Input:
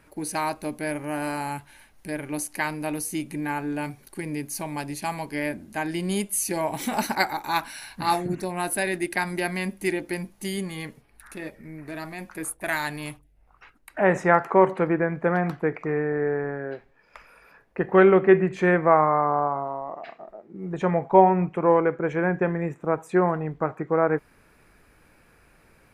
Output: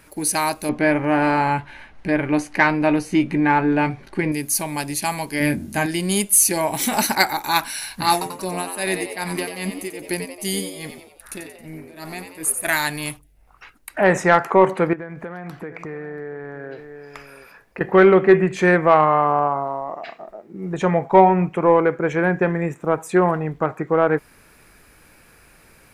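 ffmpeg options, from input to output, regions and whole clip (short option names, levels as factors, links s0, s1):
-filter_complex "[0:a]asettb=1/sr,asplit=3[s0][s1][s2];[s0]atrim=end=0.694[s3];[s1]atrim=start=0.69:end=4.32,asetpts=PTS-STARTPTS,afade=t=in:d=0.004:c=qsin,afade=t=out:st=3.626:d=0.004:c=qsin,acontrast=73,lowpass=2200,asplit=2[s4][s5];[s5]adelay=16,volume=0.237[s6];[s4][s6]amix=inputs=2:normalize=0,atrim=end_sample=160083[s7];[s2]atrim=start=4.316[s8];[s3][s7]acrossfade=d=0.004:c1=hsin:c2=qsin[s9];[s9][s8]acrossfade=d=0.004:c1=qsin:c2=hsin,asettb=1/sr,asplit=3[s10][s11][s12];[s10]atrim=end=5.404[s13];[s11]atrim=start=5.4:end=5.86,asetpts=PTS-STARTPTS,afade=t=in:d=0.004:c=qsin,afade=t=out:st=0.456:d=0.004:c=qsin,equalizer=f=110:w=0.45:g=9.5,asplit=2[s14][s15];[s15]adelay=21,volume=0.398[s16];[s14][s16]amix=inputs=2:normalize=0,atrim=end_sample=20286[s17];[s12]atrim=start=5.856[s18];[s13][s17]acrossfade=d=0.004:c1=hsin:c2=qsin[s19];[s19][s18]acrossfade=d=0.004:c1=qsin:c2=hsin,asettb=1/sr,asplit=3[s20][s21][s22];[s20]atrim=end=8.124[s23];[s21]atrim=start=8.12:end=12.65,asetpts=PTS-STARTPTS,afade=t=in:d=0.004:c=qsin,afade=t=out:st=4.526:d=0.004:c=qsin,equalizer=f=1700:t=o:w=1.1:g=-3.5,tremolo=f=2.5:d=0.88,asplit=7[s24][s25][s26][s27][s28][s29][s30];[s25]adelay=90,afreqshift=90,volume=0.422[s31];[s26]adelay=180,afreqshift=180,volume=0.202[s32];[s27]adelay=270,afreqshift=270,volume=0.0966[s33];[s28]adelay=360,afreqshift=360,volume=0.0468[s34];[s29]adelay=450,afreqshift=450,volume=0.0224[s35];[s30]adelay=540,afreqshift=540,volume=0.0107[s36];[s24][s31][s32][s33][s34][s35][s36]amix=inputs=7:normalize=0,atrim=end_sample=199773[s37];[s22]atrim=start=12.646[s38];[s23][s37]acrossfade=d=0.004:c1=hsin:c2=qsin[s39];[s39][s38]acrossfade=d=0.004:c1=qsin:c2=hsin,asettb=1/sr,asplit=3[s40][s41][s42];[s40]atrim=end=14.934[s43];[s41]atrim=start=14.93:end=17.81,asetpts=PTS-STARTPTS,afade=t=in:d=0.004:c=qsin,afade=t=out:st=2.876:d=0.004:c=qsin,aecho=1:1:685:0.112,atrim=end_sample=127008,acompressor=threshold=0.02:ratio=6:attack=3.2:release=140:knee=1:detection=peak[s44];[s42]atrim=start=17.806[s45];[s43][s44]acrossfade=d=0.004:c1=hsin:c2=qsin[s46];[s46][s45]acrossfade=d=0.004:c1=qsin:c2=hsin,highshelf=f=3100:g=9,acontrast=37,volume=0.891"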